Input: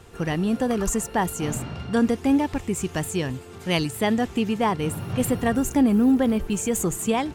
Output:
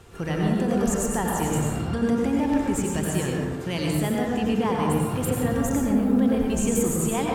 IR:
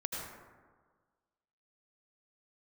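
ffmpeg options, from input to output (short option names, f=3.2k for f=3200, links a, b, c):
-filter_complex "[0:a]alimiter=limit=-17.5dB:level=0:latency=1[a];[1:a]atrim=start_sample=2205,asetrate=41013,aresample=44100[b];[a][b]afir=irnorm=-1:irlink=0"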